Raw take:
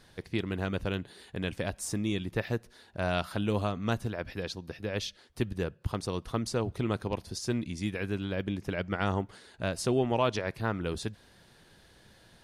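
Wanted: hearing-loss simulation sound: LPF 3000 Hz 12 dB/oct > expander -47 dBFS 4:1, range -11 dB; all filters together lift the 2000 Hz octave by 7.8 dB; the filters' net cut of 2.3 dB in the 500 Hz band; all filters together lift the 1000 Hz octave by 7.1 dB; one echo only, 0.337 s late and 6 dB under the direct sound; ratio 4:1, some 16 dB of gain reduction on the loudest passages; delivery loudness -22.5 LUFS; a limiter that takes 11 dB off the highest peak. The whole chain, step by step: bell 500 Hz -6 dB; bell 1000 Hz +8.5 dB; bell 2000 Hz +8.5 dB; compressor 4:1, threshold -37 dBFS; limiter -31.5 dBFS; LPF 3000 Hz 12 dB/oct; echo 0.337 s -6 dB; expander -47 dBFS 4:1, range -11 dB; gain +21.5 dB

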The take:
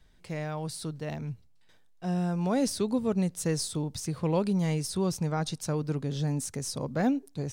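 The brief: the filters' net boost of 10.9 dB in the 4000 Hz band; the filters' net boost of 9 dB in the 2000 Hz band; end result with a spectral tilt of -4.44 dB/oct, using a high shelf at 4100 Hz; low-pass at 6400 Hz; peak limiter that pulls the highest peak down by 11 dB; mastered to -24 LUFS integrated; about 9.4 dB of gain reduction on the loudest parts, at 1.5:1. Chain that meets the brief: LPF 6400 Hz; bell 2000 Hz +7.5 dB; bell 4000 Hz +8 dB; high shelf 4100 Hz +8 dB; compressor 1.5:1, threshold -48 dBFS; gain +15.5 dB; limiter -15.5 dBFS

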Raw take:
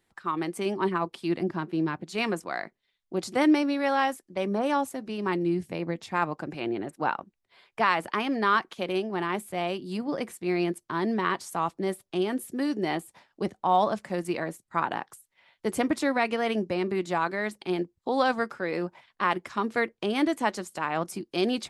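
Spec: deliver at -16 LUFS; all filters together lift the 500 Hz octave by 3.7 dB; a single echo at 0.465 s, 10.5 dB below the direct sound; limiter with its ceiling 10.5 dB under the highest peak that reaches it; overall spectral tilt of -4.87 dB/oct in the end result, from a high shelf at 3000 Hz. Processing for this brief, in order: bell 500 Hz +5 dB; high shelf 3000 Hz -3.5 dB; limiter -19.5 dBFS; echo 0.465 s -10.5 dB; gain +14 dB

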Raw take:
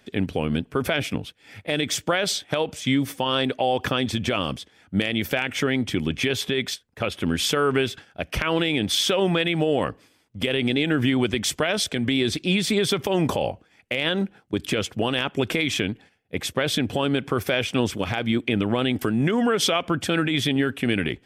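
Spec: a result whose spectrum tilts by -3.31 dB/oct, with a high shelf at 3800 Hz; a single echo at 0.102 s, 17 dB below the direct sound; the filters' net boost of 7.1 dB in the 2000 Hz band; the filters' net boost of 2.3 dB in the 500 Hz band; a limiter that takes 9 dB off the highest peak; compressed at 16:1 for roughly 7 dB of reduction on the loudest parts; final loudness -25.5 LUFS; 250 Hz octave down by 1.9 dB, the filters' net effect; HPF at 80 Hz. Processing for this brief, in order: HPF 80 Hz; bell 250 Hz -3.5 dB; bell 500 Hz +3.5 dB; bell 2000 Hz +8 dB; high shelf 3800 Hz +3 dB; compressor 16:1, threshold -21 dBFS; limiter -15 dBFS; echo 0.102 s -17 dB; gain +2 dB

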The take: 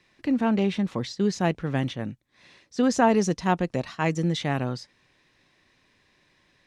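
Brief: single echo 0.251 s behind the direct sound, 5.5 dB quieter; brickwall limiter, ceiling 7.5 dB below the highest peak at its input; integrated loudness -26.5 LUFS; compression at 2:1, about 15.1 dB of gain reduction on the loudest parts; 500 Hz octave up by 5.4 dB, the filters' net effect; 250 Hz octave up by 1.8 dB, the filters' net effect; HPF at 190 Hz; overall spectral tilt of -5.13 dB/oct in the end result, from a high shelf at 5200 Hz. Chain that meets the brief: HPF 190 Hz; bell 250 Hz +3 dB; bell 500 Hz +6 dB; high shelf 5200 Hz +3.5 dB; compressor 2:1, threshold -41 dBFS; limiter -27 dBFS; echo 0.251 s -5.5 dB; gain +11 dB

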